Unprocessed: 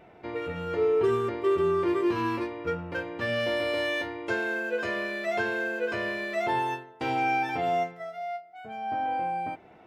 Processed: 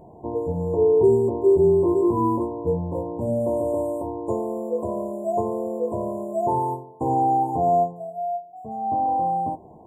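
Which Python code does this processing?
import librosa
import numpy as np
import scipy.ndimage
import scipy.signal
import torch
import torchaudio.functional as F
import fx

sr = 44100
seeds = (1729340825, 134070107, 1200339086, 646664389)

y = fx.brickwall_bandstop(x, sr, low_hz=1100.0, high_hz=6900.0)
y = fx.bass_treble(y, sr, bass_db=5, treble_db=-2)
y = fx.doubler(y, sr, ms=13.0, db=-13.0)
y = F.gain(torch.from_numpy(y), 6.0).numpy()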